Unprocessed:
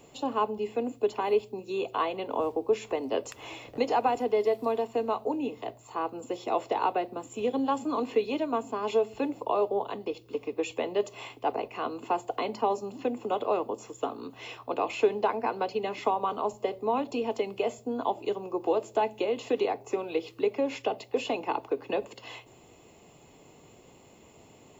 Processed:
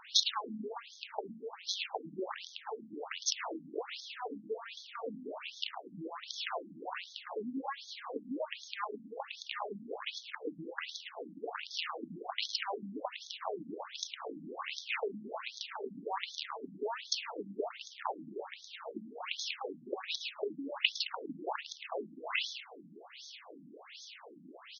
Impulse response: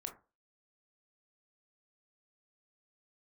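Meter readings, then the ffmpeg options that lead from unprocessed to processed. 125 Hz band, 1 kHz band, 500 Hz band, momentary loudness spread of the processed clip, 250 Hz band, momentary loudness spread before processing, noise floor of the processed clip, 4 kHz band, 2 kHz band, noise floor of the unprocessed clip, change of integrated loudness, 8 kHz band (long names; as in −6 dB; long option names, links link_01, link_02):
−8.0 dB, −12.0 dB, −14.5 dB, 10 LU, −11.0 dB, 8 LU, −55 dBFS, +6.5 dB, −0.5 dB, −56 dBFS, −9.0 dB, can't be measured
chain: -filter_complex "[0:a]lowshelf=frequency=78:gain=-5.5,acontrast=68,alimiter=limit=-18dB:level=0:latency=1:release=231,acompressor=threshold=-33dB:ratio=5,crystalizer=i=5.5:c=0,acrusher=bits=5:dc=4:mix=0:aa=0.000001,asplit=6[link_01][link_02][link_03][link_04][link_05][link_06];[link_02]adelay=108,afreqshift=36,volume=-7.5dB[link_07];[link_03]adelay=216,afreqshift=72,volume=-15.2dB[link_08];[link_04]adelay=324,afreqshift=108,volume=-23dB[link_09];[link_05]adelay=432,afreqshift=144,volume=-30.7dB[link_10];[link_06]adelay=540,afreqshift=180,volume=-38.5dB[link_11];[link_01][link_07][link_08][link_09][link_10][link_11]amix=inputs=6:normalize=0,asplit=2[link_12][link_13];[1:a]atrim=start_sample=2205[link_14];[link_13][link_14]afir=irnorm=-1:irlink=0,volume=-5.5dB[link_15];[link_12][link_15]amix=inputs=2:normalize=0,afftfilt=real='re*between(b*sr/1024,210*pow(4700/210,0.5+0.5*sin(2*PI*1.3*pts/sr))/1.41,210*pow(4700/210,0.5+0.5*sin(2*PI*1.3*pts/sr))*1.41)':imag='im*between(b*sr/1024,210*pow(4700/210,0.5+0.5*sin(2*PI*1.3*pts/sr))/1.41,210*pow(4700/210,0.5+0.5*sin(2*PI*1.3*pts/sr))*1.41)':win_size=1024:overlap=0.75,volume=2.5dB"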